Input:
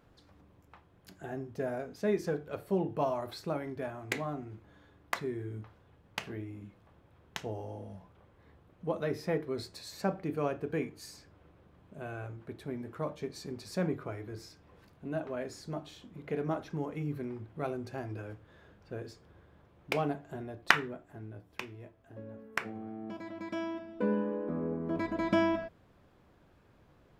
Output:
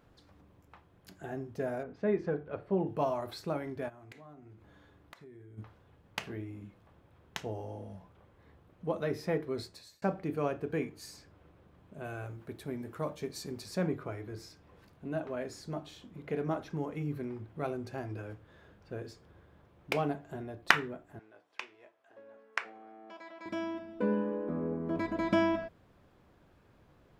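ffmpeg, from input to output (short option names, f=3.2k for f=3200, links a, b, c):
-filter_complex "[0:a]asettb=1/sr,asplit=3[a][b][c];[a]atrim=end=1.834[d];[b]atrim=start=1.83:end=2.87,asetpts=PTS-STARTPTS,afade=t=in:d=0.004:c=qsin,afade=t=out:st=1.036:d=0.004:c=qsin,lowpass=2.2k[e];[c]atrim=start=2.866[f];[d][e]acrossfade=d=0.004:c1=hsin:c2=qsin[g];[g][f]acrossfade=d=0.004:c1=qsin:c2=hsin,asplit=3[h][i][j];[h]afade=t=out:st=3.88:d=0.02[k];[i]acompressor=threshold=-51dB:ratio=5:attack=3.2:release=140:knee=1:detection=peak,afade=t=in:st=3.88:d=0.02,afade=t=out:st=5.57:d=0.02[l];[j]afade=t=in:st=5.57:d=0.02[m];[k][l][m]amix=inputs=3:normalize=0,asettb=1/sr,asplit=3[n][o][p];[n]atrim=end=12.044[q];[o]atrim=start=12.04:end=13.66,asetpts=PTS-STARTPTS,afade=t=in:d=0.004:c=qsin,afade=t=out:st=1.616:d=0.004:c=qsin,highshelf=f=6.5k:g=9.5[r];[p]atrim=start=13.656[s];[q][r]acrossfade=d=0.004:c1=hsin:c2=qsin[t];[t][s]acrossfade=d=0.004:c1=qsin:c2=hsin,asettb=1/sr,asplit=3[u][v][w];[u]atrim=end=21.194[x];[v]atrim=start=21.19:end=23.46,asetpts=PTS-STARTPTS,afade=t=in:d=0.004:c=qsin,afade=t=out:st=2.266:d=0.004:c=qsin,highpass=640,lowpass=6.8k[y];[w]atrim=start=23.456[z];[x][y]acrossfade=d=0.004:c1=hsin:c2=qsin[aa];[aa][z]acrossfade=d=0.004:c1=qsin:c2=hsin,asplit=2[ab][ac];[ab]atrim=end=10.02,asetpts=PTS-STARTPTS,afade=t=out:st=9.59:d=0.43[ad];[ac]atrim=start=10.02,asetpts=PTS-STARTPTS,afade=t=in:d=0.004:c=hsin[ae];[ad][ae]concat=n=2:v=0:a=1"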